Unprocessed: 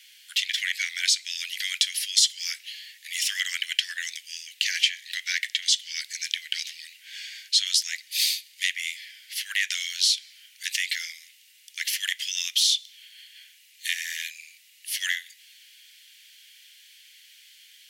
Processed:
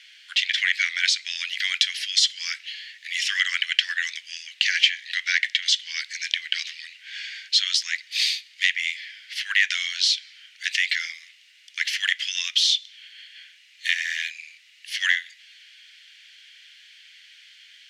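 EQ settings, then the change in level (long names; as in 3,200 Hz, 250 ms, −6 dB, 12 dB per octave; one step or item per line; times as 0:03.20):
high-frequency loss of the air 220 metres
parametric band 1,100 Hz +7.5 dB 1.4 octaves
parametric band 9,300 Hz +11 dB 1.3 octaves
+5.0 dB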